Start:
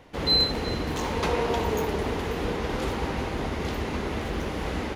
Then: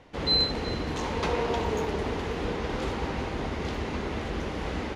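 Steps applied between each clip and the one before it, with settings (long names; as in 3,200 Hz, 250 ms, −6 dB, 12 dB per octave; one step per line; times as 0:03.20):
low-pass filter 7,700 Hz 12 dB per octave
level −2 dB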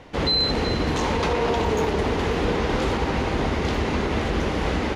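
brickwall limiter −22 dBFS, peak gain reduction 8 dB
level +8.5 dB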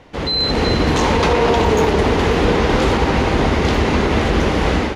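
automatic gain control gain up to 8 dB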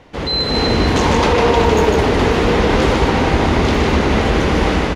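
single-tap delay 153 ms −4 dB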